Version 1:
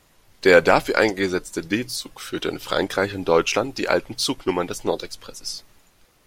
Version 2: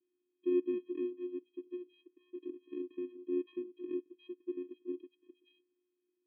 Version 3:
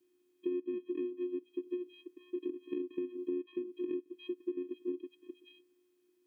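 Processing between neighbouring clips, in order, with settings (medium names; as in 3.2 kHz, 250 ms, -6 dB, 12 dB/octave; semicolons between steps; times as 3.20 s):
vocoder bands 4, square 359 Hz; cascade formant filter i; trim -6 dB
compression 8:1, threshold -44 dBFS, peak gain reduction 18 dB; trim +10.5 dB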